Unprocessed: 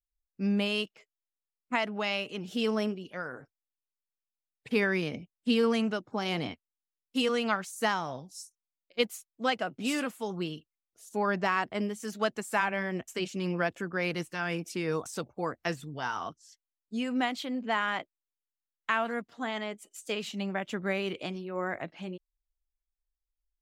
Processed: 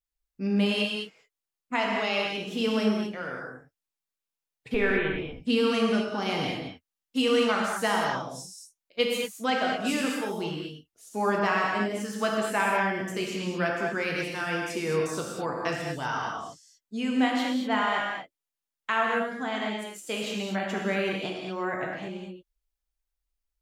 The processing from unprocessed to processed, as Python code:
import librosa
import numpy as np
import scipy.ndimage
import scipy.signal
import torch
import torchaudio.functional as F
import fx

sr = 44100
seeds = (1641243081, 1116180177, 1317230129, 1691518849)

y = fx.lpc_vocoder(x, sr, seeds[0], excitation='pitch_kept', order=10, at=(4.74, 5.18))
y = fx.rev_gated(y, sr, seeds[1], gate_ms=260, shape='flat', drr_db=-2.0)